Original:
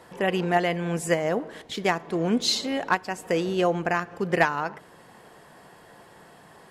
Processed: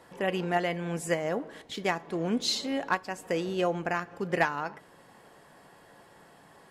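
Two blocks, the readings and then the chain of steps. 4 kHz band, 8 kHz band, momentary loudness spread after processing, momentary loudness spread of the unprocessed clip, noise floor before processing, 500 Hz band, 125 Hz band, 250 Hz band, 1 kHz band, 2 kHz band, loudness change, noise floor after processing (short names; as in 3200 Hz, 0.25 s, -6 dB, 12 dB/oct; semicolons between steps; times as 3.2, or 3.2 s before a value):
-4.5 dB, -5.0 dB, 5 LU, 5 LU, -52 dBFS, -5.0 dB, -5.5 dB, -5.0 dB, -5.0 dB, -4.5 dB, -5.0 dB, -56 dBFS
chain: resonator 280 Hz, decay 0.16 s, harmonics all, mix 50%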